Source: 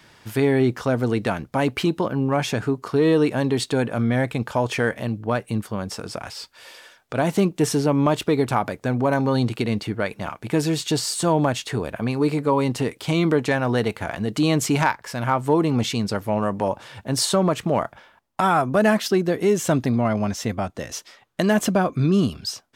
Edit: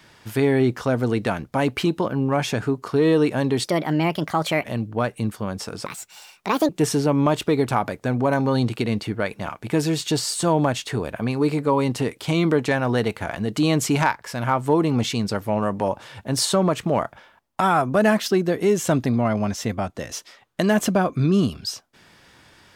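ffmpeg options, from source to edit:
ffmpeg -i in.wav -filter_complex "[0:a]asplit=5[link_01][link_02][link_03][link_04][link_05];[link_01]atrim=end=3.644[link_06];[link_02]atrim=start=3.64:end=4.95,asetpts=PTS-STARTPTS,asetrate=57771,aresample=44100[link_07];[link_03]atrim=start=4.946:end=6.174[link_08];[link_04]atrim=start=6.17:end=7.49,asetpts=PTS-STARTPTS,asetrate=70119,aresample=44100,atrim=end_sample=36611,asetpts=PTS-STARTPTS[link_09];[link_05]atrim=start=7.486[link_10];[link_06][link_07]acrossfade=duration=0.004:curve1=hsin:curve2=hsin[link_11];[link_11][link_08]acrossfade=duration=0.004:curve1=hsin:curve2=hsin[link_12];[link_12][link_09]acrossfade=duration=0.004:curve1=hsin:curve2=hsin[link_13];[link_13][link_10]acrossfade=duration=0.004:curve1=hsin:curve2=hsin" out.wav

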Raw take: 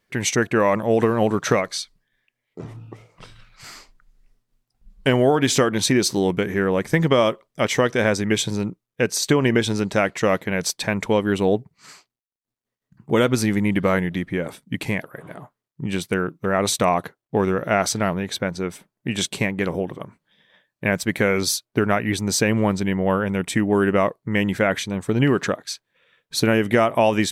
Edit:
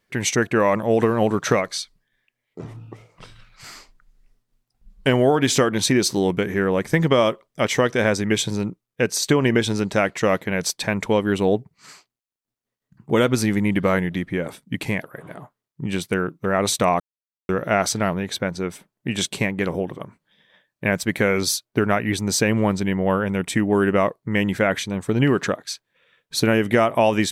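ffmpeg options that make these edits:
ffmpeg -i in.wav -filter_complex "[0:a]asplit=3[link_01][link_02][link_03];[link_01]atrim=end=17,asetpts=PTS-STARTPTS,afade=type=out:start_time=16.996:duration=0.004:curve=hsin[link_04];[link_02]atrim=start=17:end=17.49,asetpts=PTS-STARTPTS,volume=0[link_05];[link_03]atrim=start=17.49,asetpts=PTS-STARTPTS,afade=type=in:duration=0.004:curve=hsin[link_06];[link_04][link_05][link_06]concat=n=3:v=0:a=1" out.wav

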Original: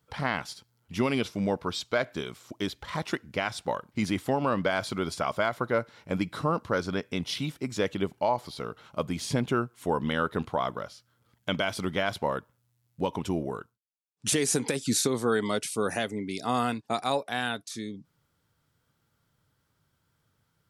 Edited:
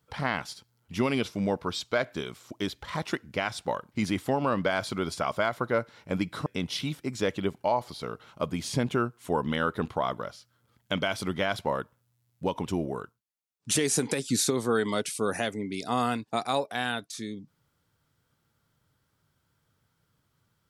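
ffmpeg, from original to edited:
ffmpeg -i in.wav -filter_complex "[0:a]asplit=2[link_01][link_02];[link_01]atrim=end=6.462[link_03];[link_02]atrim=start=7.028[link_04];[link_03][link_04]acrossfade=duration=0.004:curve1=hsin:curve2=hsin" out.wav

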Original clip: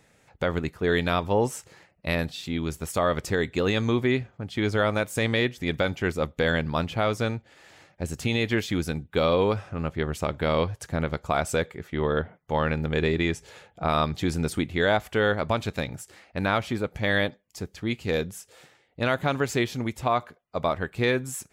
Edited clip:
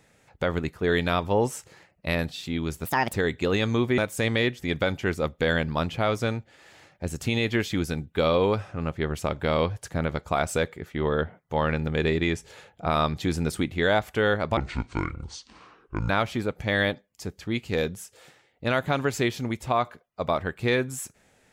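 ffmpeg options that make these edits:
ffmpeg -i in.wav -filter_complex "[0:a]asplit=6[link_01][link_02][link_03][link_04][link_05][link_06];[link_01]atrim=end=2.854[link_07];[link_02]atrim=start=2.85:end=3.28,asetpts=PTS-STARTPTS,asetrate=65709,aresample=44100[link_08];[link_03]atrim=start=3.276:end=4.122[link_09];[link_04]atrim=start=4.958:end=15.554[link_10];[link_05]atrim=start=15.55:end=16.45,asetpts=PTS-STARTPTS,asetrate=26019,aresample=44100,atrim=end_sample=67271,asetpts=PTS-STARTPTS[link_11];[link_06]atrim=start=16.446[link_12];[link_07][link_08]acrossfade=duration=0.004:curve1=hsin:curve2=hsin[link_13];[link_13][link_09]acrossfade=duration=0.004:curve1=hsin:curve2=hsin[link_14];[link_14][link_10]acrossfade=duration=0.004:curve1=hsin:curve2=hsin[link_15];[link_15][link_11]acrossfade=duration=0.004:curve1=hsin:curve2=hsin[link_16];[link_16][link_12]acrossfade=duration=0.004:curve1=hsin:curve2=hsin" out.wav

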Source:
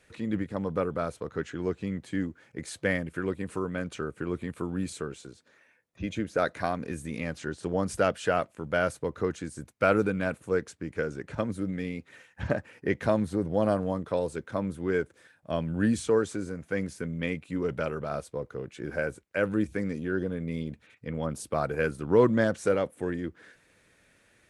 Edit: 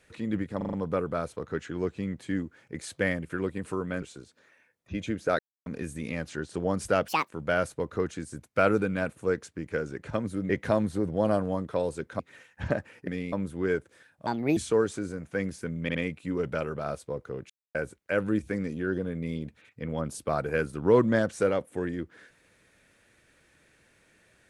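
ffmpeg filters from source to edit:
ffmpeg -i in.wav -filter_complex "[0:a]asplit=20[link_01][link_02][link_03][link_04][link_05][link_06][link_07][link_08][link_09][link_10][link_11][link_12][link_13][link_14][link_15][link_16][link_17][link_18][link_19][link_20];[link_01]atrim=end=0.612[link_21];[link_02]atrim=start=0.568:end=0.612[link_22];[link_03]atrim=start=0.568:end=0.612[link_23];[link_04]atrim=start=0.568:end=0.612[link_24];[link_05]atrim=start=0.568:end=3.862[link_25];[link_06]atrim=start=5.108:end=6.48,asetpts=PTS-STARTPTS,afade=type=out:start_time=1.368:duration=0.004:curve=hsin[link_26];[link_07]atrim=start=6.48:end=6.75,asetpts=PTS-STARTPTS,volume=0[link_27];[link_08]atrim=start=6.75:end=8.174,asetpts=PTS-STARTPTS,afade=type=in:duration=0.004:curve=hsin[link_28];[link_09]atrim=start=8.17:end=8.53,asetpts=PTS-STARTPTS,asetrate=77616,aresample=44100,atrim=end_sample=9020,asetpts=PTS-STARTPTS[link_29];[link_10]atrim=start=8.526:end=11.742[link_30];[link_11]atrim=start=12.868:end=14.572[link_31];[link_12]atrim=start=11.988:end=12.872[link_32];[link_13]atrim=start=11.738:end=11.992[link_33];[link_14]atrim=start=14.568:end=15.514[link_34];[link_15]atrim=start=15.51:end=15.94,asetpts=PTS-STARTPTS,asetrate=62622,aresample=44100,atrim=end_sample=13354,asetpts=PTS-STARTPTS[link_35];[link_16]atrim=start=15.936:end=17.262[link_36];[link_17]atrim=start=17.198:end=17.262[link_37];[link_18]atrim=start=17.198:end=18.75,asetpts=PTS-STARTPTS,afade=type=out:start_time=1.548:duration=0.004:curve=hsin[link_38];[link_19]atrim=start=18.75:end=19,asetpts=PTS-STARTPTS,volume=0[link_39];[link_20]atrim=start=19,asetpts=PTS-STARTPTS,afade=type=in:duration=0.004:curve=hsin[link_40];[link_21][link_22]acrossfade=duration=0.004:curve1=hsin:curve2=hsin[link_41];[link_41][link_23]acrossfade=duration=0.004:curve1=hsin:curve2=hsin[link_42];[link_42][link_24]acrossfade=duration=0.004:curve1=hsin:curve2=hsin[link_43];[link_43][link_25]acrossfade=duration=0.004:curve1=hsin:curve2=hsin[link_44];[link_26][link_27][link_28]concat=n=3:v=0:a=1[link_45];[link_44][link_45]acrossfade=duration=0.004:curve1=hsin:curve2=hsin[link_46];[link_46][link_29]acrossfade=duration=0.004:curve1=hsin:curve2=hsin[link_47];[link_47][link_30]acrossfade=duration=0.004:curve1=hsin:curve2=hsin[link_48];[link_48][link_31]acrossfade=duration=0.004:curve1=hsin:curve2=hsin[link_49];[link_49][link_32]acrossfade=duration=0.004:curve1=hsin:curve2=hsin[link_50];[link_50][link_33]acrossfade=duration=0.004:curve1=hsin:curve2=hsin[link_51];[link_51][link_34]acrossfade=duration=0.004:curve1=hsin:curve2=hsin[link_52];[link_52][link_35]acrossfade=duration=0.004:curve1=hsin:curve2=hsin[link_53];[link_53][link_36]acrossfade=duration=0.004:curve1=hsin:curve2=hsin[link_54];[link_54][link_37]acrossfade=duration=0.004:curve1=hsin:curve2=hsin[link_55];[link_38][link_39][link_40]concat=n=3:v=0:a=1[link_56];[link_55][link_56]acrossfade=duration=0.004:curve1=hsin:curve2=hsin" out.wav

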